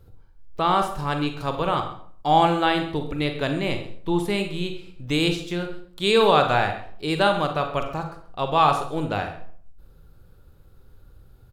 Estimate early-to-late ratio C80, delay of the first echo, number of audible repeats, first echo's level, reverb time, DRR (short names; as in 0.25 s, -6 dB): 11.0 dB, 0.133 s, 1, -16.5 dB, 0.55 s, 5.0 dB